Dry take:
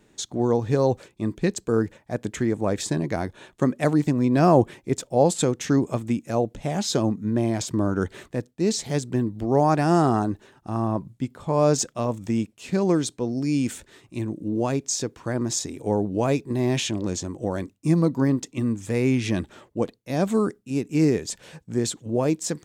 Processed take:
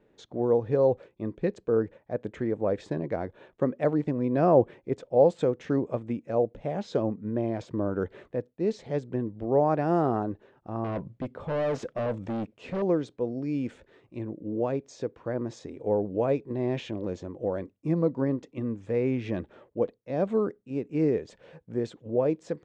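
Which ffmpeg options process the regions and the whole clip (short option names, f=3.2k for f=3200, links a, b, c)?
-filter_complex "[0:a]asettb=1/sr,asplit=3[a][b][c];[a]atrim=end=10.844[d];[b]atrim=start=10.84:end=12.82,asetpts=PTS-STARTPTS,afade=t=in:d=0.004:c=qsin,afade=t=out:st=1.976:d=0.004:c=qsin,acontrast=82,asoftclip=type=hard:threshold=-22.5dB[e];[c]atrim=start=12.816[f];[d][e]acrossfade=d=0.004:c1=hsin:c2=qsin[g];[g][f]acrossfade=d=0.004:c1=qsin:c2=hsin,lowpass=2.5k,equalizer=f=510:t=o:w=0.72:g=9.5,volume=-8dB"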